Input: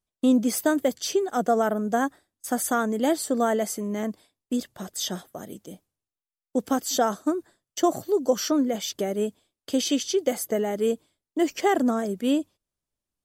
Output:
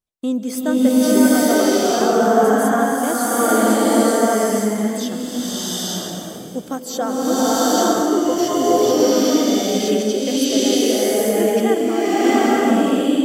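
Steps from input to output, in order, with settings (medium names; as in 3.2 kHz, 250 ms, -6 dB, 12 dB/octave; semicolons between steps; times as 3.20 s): swelling reverb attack 860 ms, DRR -11 dB; trim -2 dB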